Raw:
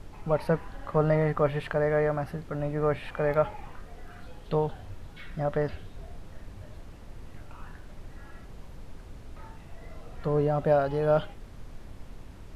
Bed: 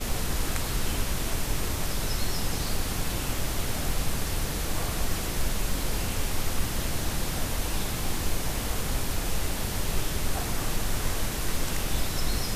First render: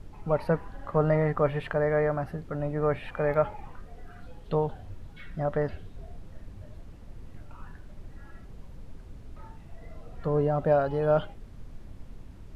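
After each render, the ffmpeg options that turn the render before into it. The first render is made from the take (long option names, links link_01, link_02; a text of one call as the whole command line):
ffmpeg -i in.wav -af "afftdn=noise_reduction=6:noise_floor=-46" out.wav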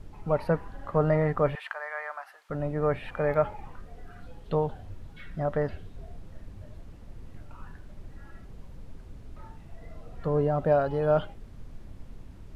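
ffmpeg -i in.wav -filter_complex "[0:a]asettb=1/sr,asplit=3[link_01][link_02][link_03];[link_01]atrim=end=1.554[link_04];[link_02]atrim=start=1.55:end=2.5,asetpts=PTS-STARTPTS,afade=type=in:duration=0.004:curve=qsin,afade=type=out:start_time=0.946:duration=0.004:curve=qsin,highpass=frequency=900:width=0.5412,highpass=frequency=900:width=1.3066[link_05];[link_03]atrim=start=2.496[link_06];[link_04][link_05]acrossfade=duration=0.004:curve1=hsin:curve2=qsin[link_07];[link_07][link_06]acrossfade=duration=0.004:curve1=qsin:curve2=hsin" out.wav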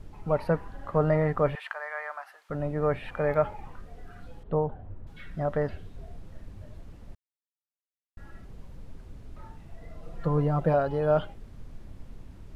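ffmpeg -i in.wav -filter_complex "[0:a]asettb=1/sr,asplit=3[link_01][link_02][link_03];[link_01]atrim=end=4.434[link_04];[link_02]atrim=start=4.43:end=5.07,asetpts=PTS-STARTPTS,afade=type=in:duration=0.004:curve=qsin,afade=type=out:start_time=0.636:duration=0.004:curve=qsin,lowpass=1300[link_05];[link_03]atrim=start=5.066[link_06];[link_04][link_05]acrossfade=duration=0.004:curve1=hsin:curve2=qsin[link_07];[link_07][link_06]acrossfade=duration=0.004:curve1=qsin:curve2=hsin,asettb=1/sr,asplit=3[link_08][link_09][link_10];[link_08]atrim=end=10.024[link_11];[link_09]atrim=start=10.02:end=10.74,asetpts=PTS-STARTPTS,afade=type=in:duration=0.004:curve=qsin,afade=type=out:start_time=0.716:duration=0.004:curve=qsin,aecho=1:1:5.9:0.69,atrim=end_sample=31752[link_12];[link_10]atrim=start=10.736[link_13];[link_11][link_12]acrossfade=duration=0.004:curve1=hsin:curve2=qsin[link_14];[link_14][link_13]acrossfade=duration=0.004:curve1=qsin:curve2=hsin,asplit=3[link_15][link_16][link_17];[link_15]atrim=end=7.15,asetpts=PTS-STARTPTS,afade=type=out:start_time=7.146:duration=0.004:curve=hsin[link_18];[link_16]atrim=start=7.15:end=8.17,asetpts=PTS-STARTPTS,volume=0[link_19];[link_17]atrim=start=8.17,asetpts=PTS-STARTPTS,afade=type=in:duration=0.004:curve=hsin[link_20];[link_18][link_19][link_20]concat=n=3:v=0:a=1" out.wav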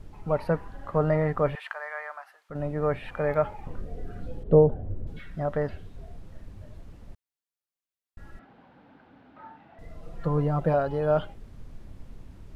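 ffmpeg -i in.wav -filter_complex "[0:a]asettb=1/sr,asplit=3[link_01][link_02][link_03];[link_01]atrim=end=3.664[link_04];[link_02]atrim=start=3.66:end=5.19,asetpts=PTS-STARTPTS,afade=type=in:duration=0.004:curve=qsin,afade=type=out:start_time=1.526:duration=0.004:curve=qsin,lowshelf=frequency=690:width_type=q:width=1.5:gain=8.5[link_05];[link_03]atrim=start=5.186[link_06];[link_04][link_05]acrossfade=duration=0.004:curve1=hsin:curve2=qsin[link_07];[link_07][link_06]acrossfade=duration=0.004:curve1=qsin:curve2=hsin,asettb=1/sr,asplit=3[link_08][link_09][link_10];[link_08]atrim=end=8.394[link_11];[link_09]atrim=start=8.39:end=9.79,asetpts=PTS-STARTPTS,afade=type=in:duration=0.004:curve=qsin,afade=type=out:start_time=1.396:duration=0.004:curve=qsin,highpass=260,equalizer=frequency=270:width_type=q:width=4:gain=7,equalizer=frequency=400:width_type=q:width=4:gain=-6,equalizer=frequency=810:width_type=q:width=4:gain=10,equalizer=frequency=1500:width_type=q:width=4:gain=8,lowpass=frequency=3600:width=0.5412,lowpass=frequency=3600:width=1.3066[link_12];[link_10]atrim=start=9.786[link_13];[link_11][link_12]acrossfade=duration=0.004:curve1=hsin:curve2=qsin[link_14];[link_14][link_13]acrossfade=duration=0.004:curve1=qsin:curve2=hsin,asplit=2[link_15][link_16];[link_15]atrim=end=2.55,asetpts=PTS-STARTPTS,afade=type=out:start_time=1.89:duration=0.66:silence=0.473151[link_17];[link_16]atrim=start=2.55,asetpts=PTS-STARTPTS,afade=type=in:duration=0.004:curve=hsin:silence=0.473151[link_18];[link_17][link_18]concat=n=2:v=0:a=1" out.wav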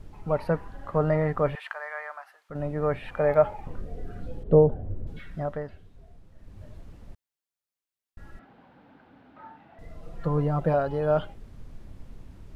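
ffmpeg -i in.wav -filter_complex "[0:a]asettb=1/sr,asplit=3[link_01][link_02][link_03];[link_01]atrim=end=3.194[link_04];[link_02]atrim=start=3.19:end=3.62,asetpts=PTS-STARTPTS,afade=type=in:duration=0.004:curve=qsin,afade=type=out:start_time=0.426:duration=0.004:curve=qsin,equalizer=frequency=660:width_type=o:width=0.77:gain=6[link_05];[link_03]atrim=start=3.616[link_06];[link_04][link_05]acrossfade=duration=0.004:curve1=hsin:curve2=qsin[link_07];[link_07][link_06]acrossfade=duration=0.004:curve1=qsin:curve2=hsin,asplit=3[link_08][link_09][link_10];[link_08]atrim=end=5.65,asetpts=PTS-STARTPTS,afade=type=out:start_time=5.37:duration=0.28:silence=0.375837[link_11];[link_09]atrim=start=5.65:end=6.36,asetpts=PTS-STARTPTS,volume=-8.5dB[link_12];[link_10]atrim=start=6.36,asetpts=PTS-STARTPTS,afade=type=in:duration=0.28:silence=0.375837[link_13];[link_11][link_12][link_13]concat=n=3:v=0:a=1" out.wav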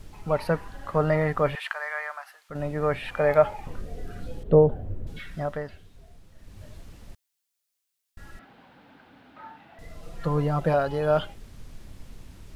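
ffmpeg -i in.wav -af "highshelf=frequency=2000:gain=12" out.wav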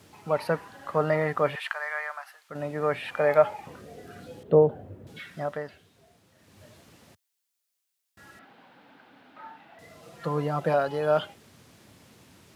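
ffmpeg -i in.wav -af "highpass=frequency=87:width=0.5412,highpass=frequency=87:width=1.3066,lowshelf=frequency=150:gain=-11.5" out.wav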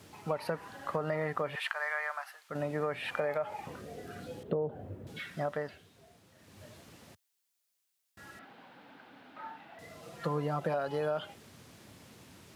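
ffmpeg -i in.wav -af "alimiter=limit=-15dB:level=0:latency=1:release=124,acompressor=threshold=-29dB:ratio=6" out.wav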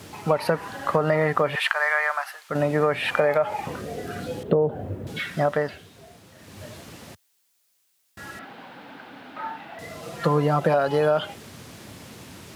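ffmpeg -i in.wav -af "volume=12dB" out.wav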